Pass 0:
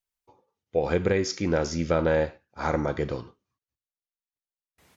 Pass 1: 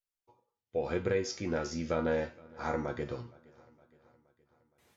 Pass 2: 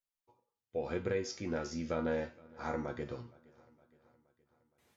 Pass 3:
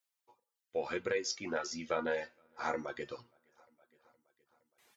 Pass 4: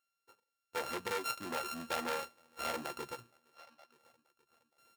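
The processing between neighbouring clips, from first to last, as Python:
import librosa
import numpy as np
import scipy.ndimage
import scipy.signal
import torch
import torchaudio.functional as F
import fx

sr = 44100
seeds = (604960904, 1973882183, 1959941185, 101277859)

y1 = fx.comb_fb(x, sr, f0_hz=120.0, decay_s=0.25, harmonics='all', damping=0.0, mix_pct=80)
y1 = fx.echo_feedback(y1, sr, ms=467, feedback_pct=57, wet_db=-24.0)
y2 = fx.peak_eq(y1, sr, hz=240.0, db=2.5, octaves=0.31)
y2 = y2 * librosa.db_to_amplitude(-4.0)
y3 = fx.highpass(y2, sr, hz=790.0, slope=6)
y3 = fx.dereverb_blind(y3, sr, rt60_s=1.1)
y3 = y3 * librosa.db_to_amplitude(7.0)
y4 = np.r_[np.sort(y3[:len(y3) // 32 * 32].reshape(-1, 32), axis=1).ravel(), y3[len(y3) // 32 * 32:]]
y4 = fx.spec_box(y4, sr, start_s=3.55, length_s=0.37, low_hz=500.0, high_hz=6400.0, gain_db=7)
y4 = fx.transformer_sat(y4, sr, knee_hz=2900.0)
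y4 = y4 * librosa.db_to_amplitude(1.0)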